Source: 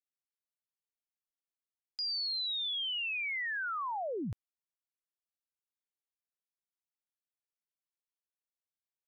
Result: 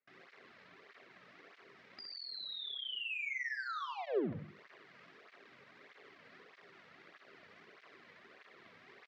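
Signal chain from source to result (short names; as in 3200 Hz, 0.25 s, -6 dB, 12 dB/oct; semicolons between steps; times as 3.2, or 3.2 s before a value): zero-crossing step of -47.5 dBFS; notches 50/100/150/200 Hz; gate with hold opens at -53 dBFS; EQ curve 200 Hz 0 dB, 290 Hz -4 dB, 2000 Hz +3 dB, 3200 Hz -15 dB; sample leveller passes 3; compressor 2.5:1, threshold -47 dBFS, peak gain reduction 11 dB; speaker cabinet 130–4200 Hz, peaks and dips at 400 Hz +9 dB, 880 Hz -8 dB, 1500 Hz -3 dB; feedback echo 65 ms, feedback 41%, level -5.5 dB; reverb RT60 0.45 s, pre-delay 6 ms, DRR 19 dB; tape flanging out of phase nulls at 1.6 Hz, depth 3 ms; gain +4 dB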